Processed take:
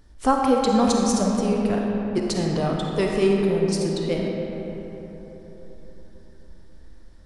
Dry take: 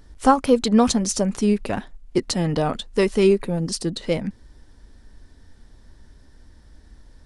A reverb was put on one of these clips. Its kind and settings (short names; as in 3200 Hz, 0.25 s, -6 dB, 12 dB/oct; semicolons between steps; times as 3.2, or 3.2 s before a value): digital reverb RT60 4.1 s, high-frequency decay 0.45×, pre-delay 10 ms, DRR -0.5 dB; gain -4.5 dB